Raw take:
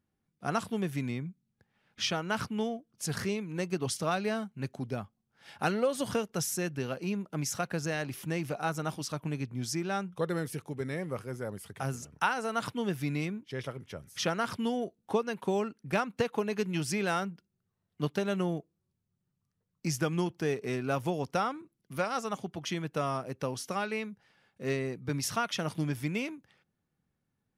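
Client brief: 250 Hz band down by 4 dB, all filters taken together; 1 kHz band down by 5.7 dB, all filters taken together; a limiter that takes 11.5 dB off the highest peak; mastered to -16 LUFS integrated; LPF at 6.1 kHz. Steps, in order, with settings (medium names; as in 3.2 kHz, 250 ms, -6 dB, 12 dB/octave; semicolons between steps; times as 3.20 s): low-pass 6.1 kHz; peaking EQ 250 Hz -5.5 dB; peaking EQ 1 kHz -8 dB; trim +23 dB; peak limiter -4.5 dBFS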